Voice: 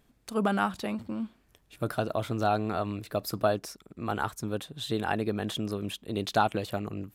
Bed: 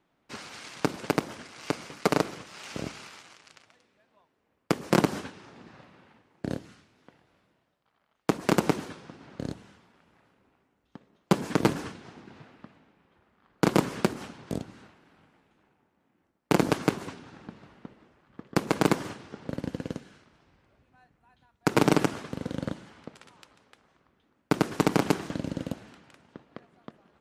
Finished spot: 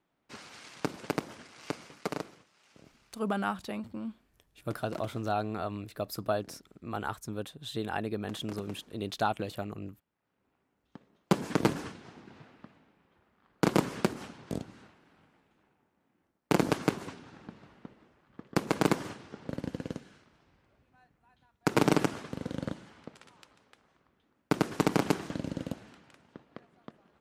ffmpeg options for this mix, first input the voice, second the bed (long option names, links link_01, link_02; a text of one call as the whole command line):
ffmpeg -i stem1.wav -i stem2.wav -filter_complex "[0:a]adelay=2850,volume=-4.5dB[link_01];[1:a]volume=13dB,afade=type=out:start_time=1.67:duration=0.86:silence=0.158489,afade=type=in:start_time=10.19:duration=0.71:silence=0.112202[link_02];[link_01][link_02]amix=inputs=2:normalize=0" out.wav